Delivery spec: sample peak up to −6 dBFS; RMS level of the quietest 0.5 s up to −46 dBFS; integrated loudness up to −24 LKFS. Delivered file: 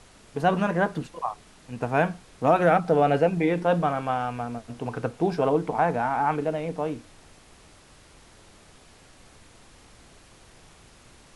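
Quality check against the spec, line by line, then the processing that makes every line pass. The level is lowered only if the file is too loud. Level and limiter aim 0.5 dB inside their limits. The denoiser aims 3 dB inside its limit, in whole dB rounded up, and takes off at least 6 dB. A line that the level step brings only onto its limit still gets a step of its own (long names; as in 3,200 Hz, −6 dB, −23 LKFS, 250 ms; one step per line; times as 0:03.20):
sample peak −7.0 dBFS: in spec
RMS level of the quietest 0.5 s −53 dBFS: in spec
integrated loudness −25.0 LKFS: in spec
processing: no processing needed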